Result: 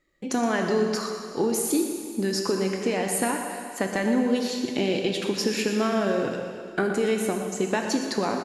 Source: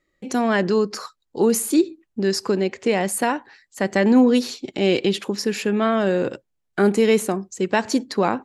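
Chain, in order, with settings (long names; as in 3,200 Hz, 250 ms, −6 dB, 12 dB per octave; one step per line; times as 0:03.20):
downward compressor, threshold −22 dBFS, peak gain reduction 11 dB
on a send: single-tap delay 120 ms −12 dB
on the sum: dense smooth reverb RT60 2.2 s, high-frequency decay 1×, pre-delay 0 ms, DRR 3 dB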